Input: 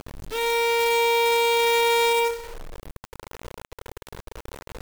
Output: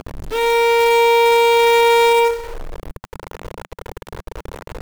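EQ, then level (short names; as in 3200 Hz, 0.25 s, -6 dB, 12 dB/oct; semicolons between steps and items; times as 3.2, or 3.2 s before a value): bell 180 Hz -13.5 dB 0.21 oct; high shelf 2400 Hz -8 dB; +9.0 dB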